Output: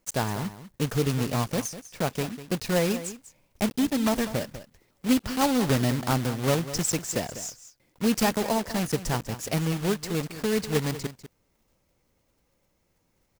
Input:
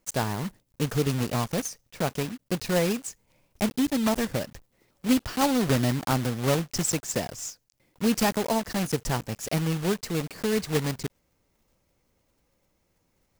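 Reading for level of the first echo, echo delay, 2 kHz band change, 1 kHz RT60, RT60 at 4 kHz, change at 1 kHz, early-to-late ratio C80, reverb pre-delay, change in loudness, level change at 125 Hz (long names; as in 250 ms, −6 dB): −13.5 dB, 197 ms, 0.0 dB, no reverb audible, no reverb audible, 0.0 dB, no reverb audible, no reverb audible, 0.0 dB, 0.0 dB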